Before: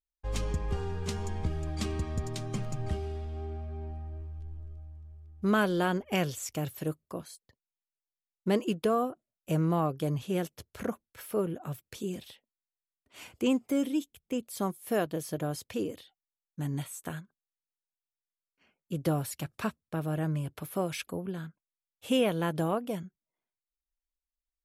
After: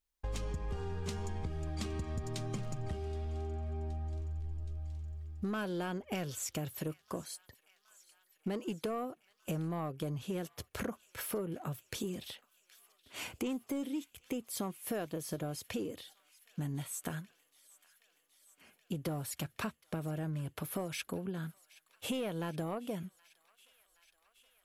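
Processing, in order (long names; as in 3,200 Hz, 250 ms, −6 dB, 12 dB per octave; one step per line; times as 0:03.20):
soft clipping −20.5 dBFS, distortion −18 dB
downward compressor 5 to 1, threshold −42 dBFS, peak gain reduction 15.5 dB
on a send: delay with a high-pass on its return 772 ms, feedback 76%, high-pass 1,600 Hz, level −20.5 dB
on the sum: level +6 dB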